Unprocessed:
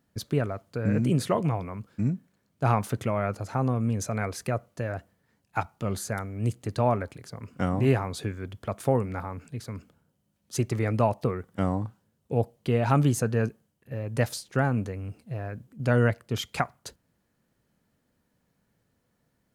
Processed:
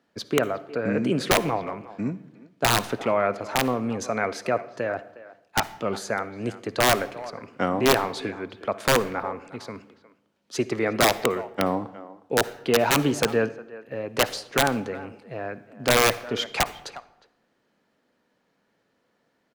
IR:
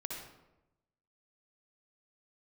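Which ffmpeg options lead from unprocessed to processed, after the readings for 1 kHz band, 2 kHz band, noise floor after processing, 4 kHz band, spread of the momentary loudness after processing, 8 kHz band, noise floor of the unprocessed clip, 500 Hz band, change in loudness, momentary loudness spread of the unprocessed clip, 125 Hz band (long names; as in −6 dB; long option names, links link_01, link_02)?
+5.5 dB, +9.5 dB, −71 dBFS, +14.0 dB, 16 LU, +9.0 dB, −74 dBFS, +5.0 dB, +3.5 dB, 13 LU, −8.0 dB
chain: -filter_complex "[0:a]acrossover=split=240 5600:gain=0.1 1 0.158[link_01][link_02][link_03];[link_01][link_02][link_03]amix=inputs=3:normalize=0,asplit=2[link_04][link_05];[link_05]adelay=360,highpass=300,lowpass=3400,asoftclip=type=hard:threshold=-19dB,volume=-17dB[link_06];[link_04][link_06]amix=inputs=2:normalize=0,aeval=exprs='(mod(7.5*val(0)+1,2)-1)/7.5':channel_layout=same,asplit=2[link_07][link_08];[1:a]atrim=start_sample=2205,asetrate=48510,aresample=44100[link_09];[link_08][link_09]afir=irnorm=-1:irlink=0,volume=-12dB[link_10];[link_07][link_10]amix=inputs=2:normalize=0,volume=5.5dB"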